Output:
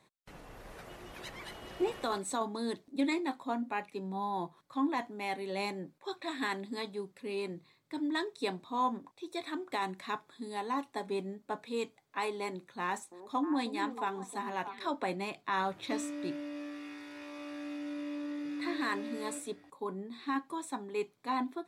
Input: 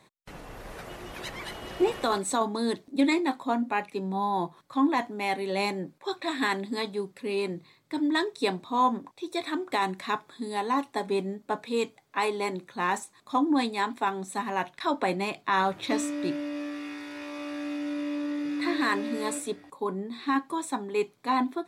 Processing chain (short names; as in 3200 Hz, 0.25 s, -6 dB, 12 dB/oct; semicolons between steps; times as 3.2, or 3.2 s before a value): 12.8–14.9 delay with a stepping band-pass 0.315 s, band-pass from 390 Hz, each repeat 1.4 oct, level -5.5 dB; gain -7.5 dB